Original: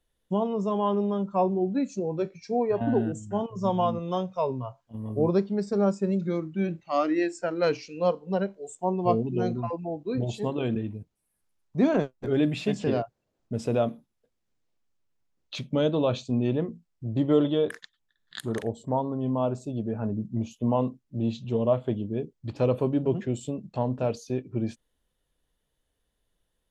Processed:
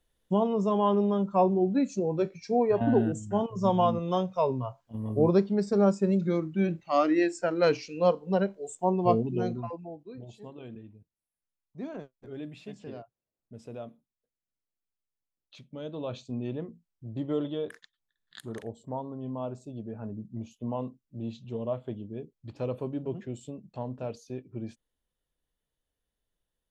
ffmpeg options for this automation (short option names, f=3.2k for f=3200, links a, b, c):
-af "volume=8.5dB,afade=t=out:st=8.96:d=0.82:silence=0.398107,afade=t=out:st=9.78:d=0.38:silence=0.354813,afade=t=in:st=15.79:d=0.43:silence=0.421697"